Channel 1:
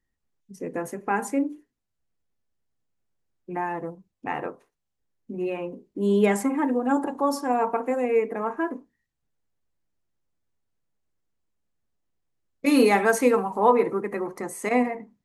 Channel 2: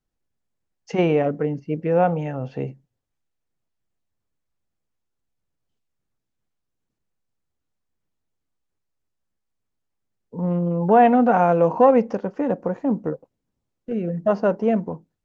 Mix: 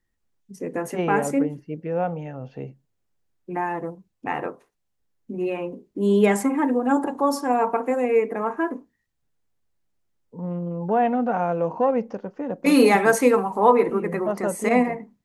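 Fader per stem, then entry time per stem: +2.5 dB, -6.5 dB; 0.00 s, 0.00 s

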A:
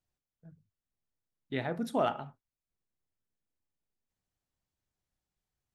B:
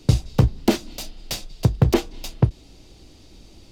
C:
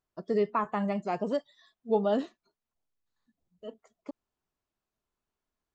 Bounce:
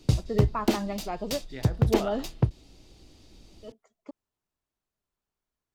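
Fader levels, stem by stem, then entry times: -6.5 dB, -6.0 dB, -2.5 dB; 0.00 s, 0.00 s, 0.00 s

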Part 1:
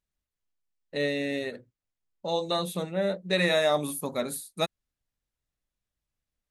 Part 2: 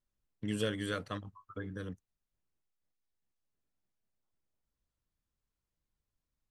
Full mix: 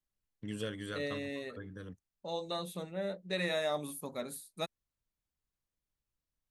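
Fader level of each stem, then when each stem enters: -9.5 dB, -5.0 dB; 0.00 s, 0.00 s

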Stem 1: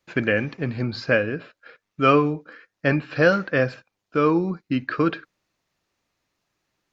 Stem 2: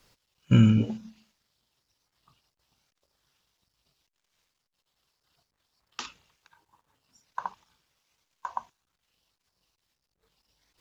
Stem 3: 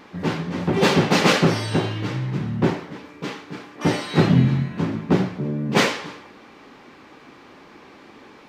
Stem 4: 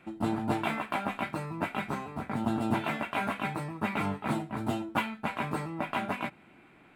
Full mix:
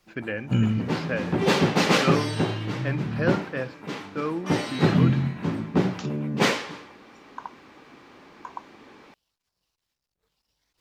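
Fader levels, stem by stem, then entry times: -10.0 dB, -4.0 dB, -3.5 dB, -14.5 dB; 0.00 s, 0.00 s, 0.65 s, 0.00 s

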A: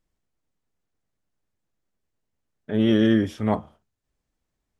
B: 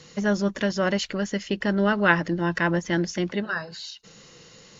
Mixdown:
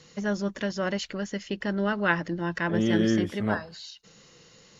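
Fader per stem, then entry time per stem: -5.0 dB, -5.0 dB; 0.00 s, 0.00 s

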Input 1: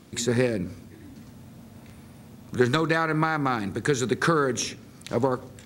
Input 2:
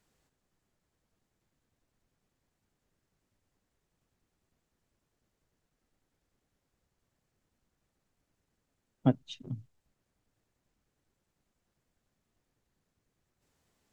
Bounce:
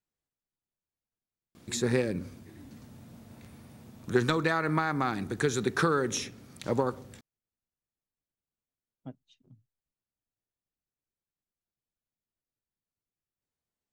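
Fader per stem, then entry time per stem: -4.0 dB, -18.5 dB; 1.55 s, 0.00 s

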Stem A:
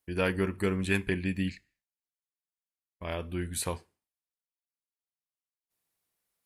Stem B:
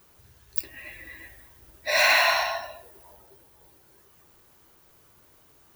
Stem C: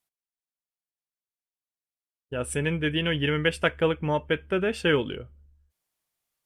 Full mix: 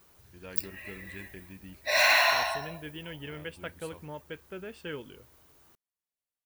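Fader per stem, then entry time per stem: -17.5 dB, -2.5 dB, -16.0 dB; 0.25 s, 0.00 s, 0.00 s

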